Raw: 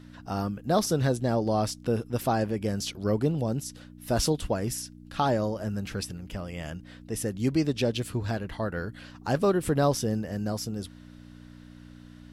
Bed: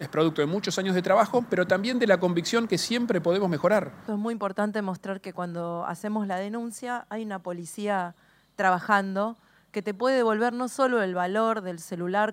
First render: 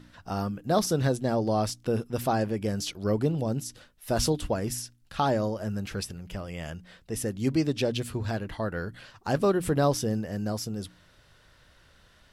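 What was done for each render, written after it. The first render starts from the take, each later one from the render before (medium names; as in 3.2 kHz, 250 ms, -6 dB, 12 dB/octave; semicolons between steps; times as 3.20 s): de-hum 60 Hz, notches 5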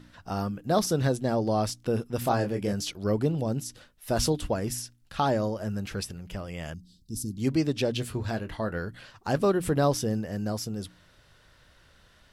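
2.19–2.73 s: doubling 25 ms -6 dB; 6.74–7.38 s: elliptic band-stop 290–4300 Hz; 7.92–8.78 s: doubling 23 ms -12 dB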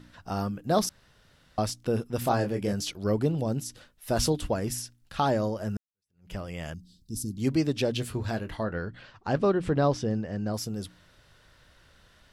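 0.89–1.58 s: room tone; 5.77–6.32 s: fade in exponential; 8.63–10.54 s: distance through air 120 m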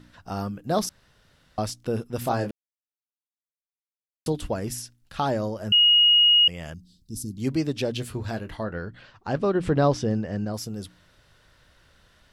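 2.51–4.26 s: mute; 5.72–6.48 s: bleep 2.88 kHz -13.5 dBFS; 9.55–10.45 s: gain +3.5 dB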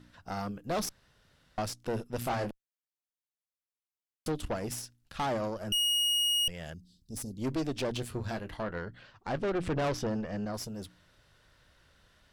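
valve stage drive 27 dB, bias 0.8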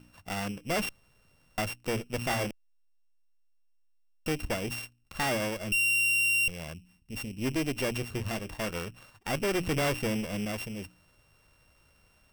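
sorted samples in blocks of 16 samples; in parallel at -11 dB: hysteresis with a dead band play -43.5 dBFS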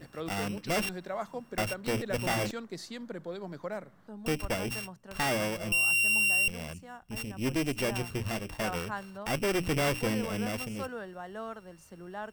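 add bed -15.5 dB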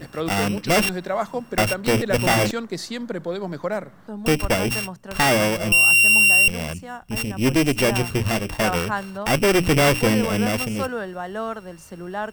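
trim +11.5 dB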